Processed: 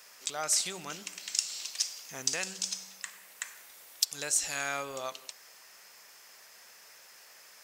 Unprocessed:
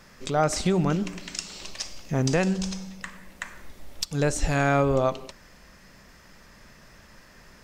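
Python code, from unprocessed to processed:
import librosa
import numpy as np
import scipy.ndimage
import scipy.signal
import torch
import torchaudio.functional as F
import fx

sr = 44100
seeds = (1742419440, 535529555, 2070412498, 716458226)

y = np.diff(x, prepend=0.0)
y = fx.dmg_noise_band(y, sr, seeds[0], low_hz=420.0, high_hz=2700.0, level_db=-68.0)
y = y * librosa.db_to_amplitude(5.5)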